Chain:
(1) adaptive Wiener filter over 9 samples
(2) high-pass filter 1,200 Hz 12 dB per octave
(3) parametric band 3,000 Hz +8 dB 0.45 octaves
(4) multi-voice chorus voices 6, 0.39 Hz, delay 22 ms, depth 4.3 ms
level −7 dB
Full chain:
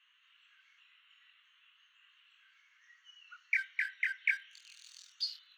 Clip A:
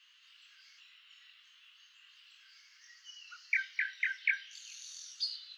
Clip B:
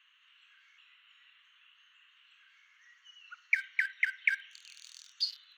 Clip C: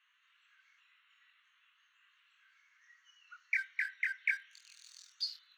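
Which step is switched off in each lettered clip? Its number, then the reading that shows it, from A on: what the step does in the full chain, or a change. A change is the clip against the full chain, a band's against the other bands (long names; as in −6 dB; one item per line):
1, change in momentary loudness spread −3 LU
4, change in integrated loudness +2.5 LU
3, change in integrated loudness −1.5 LU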